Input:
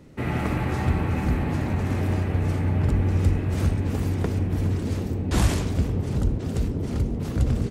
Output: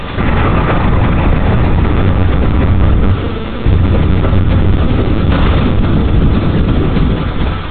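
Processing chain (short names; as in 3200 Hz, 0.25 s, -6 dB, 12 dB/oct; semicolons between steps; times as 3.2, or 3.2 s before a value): ending faded out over 0.87 s; hum 60 Hz, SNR 18 dB; 3.12–3.67 double band-pass 320 Hz, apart 0.91 oct; added noise pink -39 dBFS; LPC vocoder at 8 kHz pitch kept; on a send at -3 dB: reverb RT60 0.45 s, pre-delay 3 ms; on the sum: maximiser +17 dB; gain -1 dB; AC-3 96 kbps 32000 Hz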